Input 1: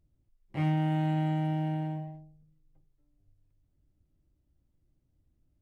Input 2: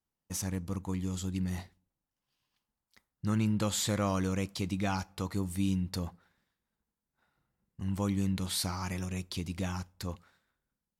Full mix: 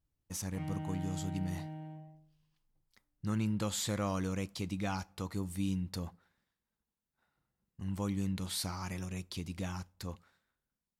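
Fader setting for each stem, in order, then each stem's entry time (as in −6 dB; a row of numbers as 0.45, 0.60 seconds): −12.5, −4.0 decibels; 0.00, 0.00 seconds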